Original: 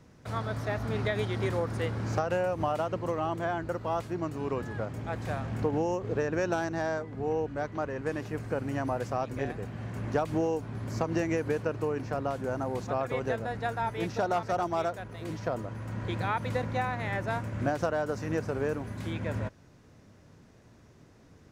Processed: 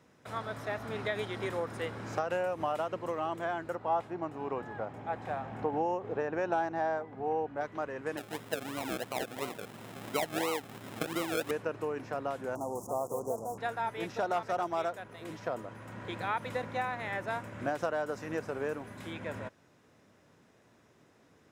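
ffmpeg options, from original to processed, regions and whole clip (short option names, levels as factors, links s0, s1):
-filter_complex "[0:a]asettb=1/sr,asplit=3[s0][s1][s2];[s0]atrim=end=3.754[s3];[s1]atrim=start=3.75:end=7.61,asetpts=PTS-STARTPTS,afade=t=in:d=0.004:c=qsin,afade=t=out:st=3.856:d=0.004:c=qsin,lowpass=f=2200:p=1,equalizer=f=800:t=o:w=0.39:g=8[s4];[s2]atrim=start=7.606[s5];[s3][s4]acrossfade=d=0.004:c1=hsin:c2=qsin[s6];[s6][s5]acrossfade=d=0.004:c1=qsin:c2=hsin,asettb=1/sr,asplit=3[s7][s8][s9];[s7]atrim=end=8.174[s10];[s8]atrim=start=8.17:end=11.51,asetpts=PTS-STARTPTS,afade=t=in:d=0.004:c=qsin,afade=t=out:st=3.336:d=0.004:c=qsin,highpass=120,lowpass=3000,acrusher=samples=36:mix=1:aa=0.000001:lfo=1:lforange=21.6:lforate=2.9[s11];[s9]atrim=start=11.506[s12];[s10][s11]acrossfade=d=0.004:c1=hsin:c2=qsin[s13];[s13][s12]acrossfade=d=0.004:c1=qsin:c2=hsin,asettb=1/sr,asplit=3[s14][s15][s16];[s14]atrim=end=12.554[s17];[s15]atrim=start=12.55:end=13.58,asetpts=PTS-STARTPTS,afade=t=in:d=0.004:c=qsin,afade=t=out:st=1.026:d=0.004:c=qsin,equalizer=f=3600:t=o:w=1.2:g=13,acrusher=bits=5:mix=0:aa=0.5,asuperstop=centerf=2600:order=12:qfactor=0.52[s18];[s16]atrim=start=13.576[s19];[s17][s18]acrossfade=d=0.004:c1=hsin:c2=qsin[s20];[s20][s19]acrossfade=d=0.004:c1=qsin:c2=hsin,highpass=f=380:p=1,equalizer=f=6000:t=o:w=0.32:g=-4.5,bandreject=f=4500:w=10,volume=0.841"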